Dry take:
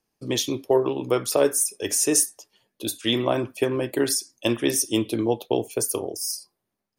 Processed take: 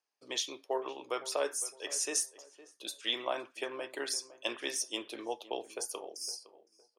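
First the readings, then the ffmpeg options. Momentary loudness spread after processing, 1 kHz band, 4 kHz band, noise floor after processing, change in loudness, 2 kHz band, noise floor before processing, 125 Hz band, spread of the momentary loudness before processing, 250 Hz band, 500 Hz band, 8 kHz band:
8 LU, -8.5 dB, -7.5 dB, -74 dBFS, -12.5 dB, -7.0 dB, -81 dBFS, under -35 dB, 8 LU, -21.0 dB, -14.5 dB, -11.5 dB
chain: -filter_complex "[0:a]highpass=690,lowpass=7.2k,asplit=2[a][b];[b]adelay=511,lowpass=f=1.4k:p=1,volume=-16dB,asplit=2[c][d];[d]adelay=511,lowpass=f=1.4k:p=1,volume=0.34,asplit=2[e][f];[f]adelay=511,lowpass=f=1.4k:p=1,volume=0.34[g];[a][c][e][g]amix=inputs=4:normalize=0,volume=-7dB"

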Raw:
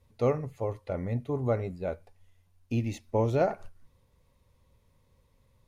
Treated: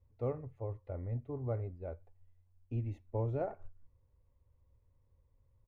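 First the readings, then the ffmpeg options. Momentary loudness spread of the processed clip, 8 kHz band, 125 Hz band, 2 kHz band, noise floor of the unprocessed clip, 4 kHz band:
10 LU, n/a, -5.5 dB, -16.5 dB, -68 dBFS, under -20 dB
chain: -af "firequalizer=gain_entry='entry(100,0);entry(190,-16);entry(270,-7);entry(4700,-28)':delay=0.05:min_phase=1,volume=-2.5dB"

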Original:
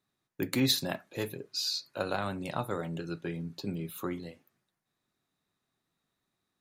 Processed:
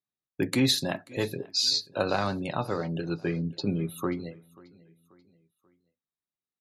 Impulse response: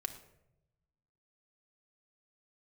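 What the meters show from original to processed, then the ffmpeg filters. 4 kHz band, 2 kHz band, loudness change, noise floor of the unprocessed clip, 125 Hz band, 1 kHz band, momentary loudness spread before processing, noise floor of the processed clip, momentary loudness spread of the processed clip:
+5.0 dB, +4.0 dB, +5.0 dB, -84 dBFS, +5.5 dB, +4.5 dB, 11 LU, under -85 dBFS, 9 LU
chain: -filter_complex "[0:a]lowpass=f=12k:w=0.5412,lowpass=f=12k:w=1.3066,bandreject=f=1.4k:w=20,afftdn=nr=24:nf=-50,asplit=2[a][b];[b]alimiter=limit=-21.5dB:level=0:latency=1:release=93,volume=-3dB[c];[a][c]amix=inputs=2:normalize=0,tremolo=f=0.56:d=0.32,asplit=2[d][e];[e]aecho=0:1:536|1072|1608:0.0708|0.0311|0.0137[f];[d][f]amix=inputs=2:normalize=0,volume=3dB"

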